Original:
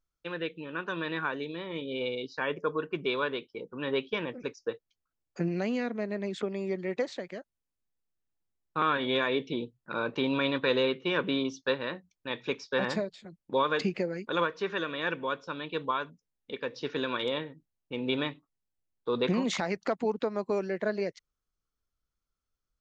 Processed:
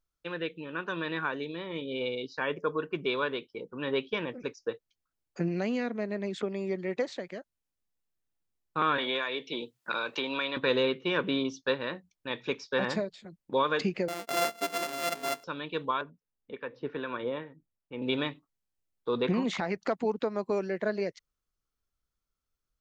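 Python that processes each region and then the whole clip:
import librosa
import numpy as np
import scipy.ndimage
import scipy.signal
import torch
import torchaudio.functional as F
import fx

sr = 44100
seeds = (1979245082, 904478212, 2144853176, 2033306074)

y = fx.chain(x, sr, fx.highpass(hz=850.0, slope=6),
    fx.band_squash(depth_pct=100), at=(8.98, 10.57))
y = fx.chain(y, sr, fx.sample_sort(block=64),
    fx.highpass(hz=280.0, slope=12), at=(14.08, 15.44))
y = fx.chain(y, sr, fx.lowpass(hz=2000.0, slope=12),
    fx.harmonic_tremolo(hz=2.4, depth_pct=50, crossover_hz=740.0), at=(16.01, 18.02))
y = fx.chain(y, sr, fx.dynamic_eq(hz=6700.0, q=0.82, threshold_db=-50.0, ratio=4.0, max_db=-8),
    fx.notch(hz=570.0, q=9.6), at=(19.14, 19.78))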